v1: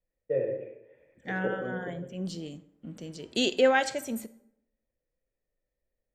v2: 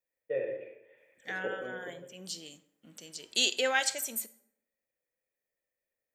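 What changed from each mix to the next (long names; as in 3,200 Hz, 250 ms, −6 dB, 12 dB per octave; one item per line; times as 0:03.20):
second voice −5.0 dB
master: add spectral tilt +4.5 dB per octave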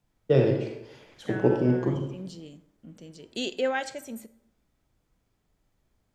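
first voice: remove formant resonators in series e
master: add spectral tilt −4.5 dB per octave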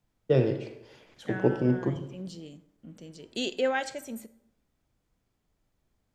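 first voice: send −7.5 dB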